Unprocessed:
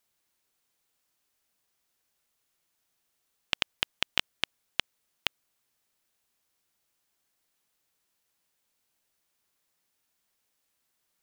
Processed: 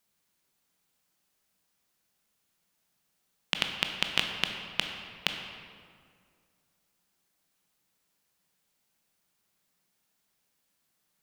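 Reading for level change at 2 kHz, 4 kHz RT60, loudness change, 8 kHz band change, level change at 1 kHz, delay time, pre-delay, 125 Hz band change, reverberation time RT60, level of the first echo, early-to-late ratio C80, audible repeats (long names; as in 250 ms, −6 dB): +1.5 dB, 1.3 s, +1.0 dB, +1.0 dB, +2.0 dB, no echo audible, 16 ms, +5.5 dB, 2.1 s, no echo audible, 6.0 dB, no echo audible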